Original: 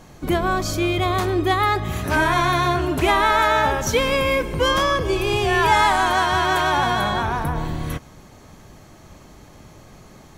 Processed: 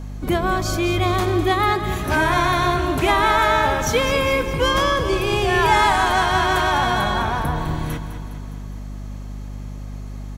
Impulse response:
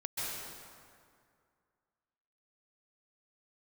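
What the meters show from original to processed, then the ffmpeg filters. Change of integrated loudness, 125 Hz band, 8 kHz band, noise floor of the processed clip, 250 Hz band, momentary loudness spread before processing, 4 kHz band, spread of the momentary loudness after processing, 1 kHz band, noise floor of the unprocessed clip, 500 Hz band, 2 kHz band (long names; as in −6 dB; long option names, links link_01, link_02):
+0.5 dB, +2.0 dB, +0.5 dB, −31 dBFS, +1.0 dB, 7 LU, +0.5 dB, 18 LU, +0.5 dB, −46 dBFS, +0.5 dB, +0.5 dB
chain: -af "aecho=1:1:205|410|615|820|1025|1230|1435:0.282|0.163|0.0948|0.055|0.0319|0.0185|0.0107,aeval=exprs='val(0)+0.0316*(sin(2*PI*50*n/s)+sin(2*PI*2*50*n/s)/2+sin(2*PI*3*50*n/s)/3+sin(2*PI*4*50*n/s)/4+sin(2*PI*5*50*n/s)/5)':channel_layout=same"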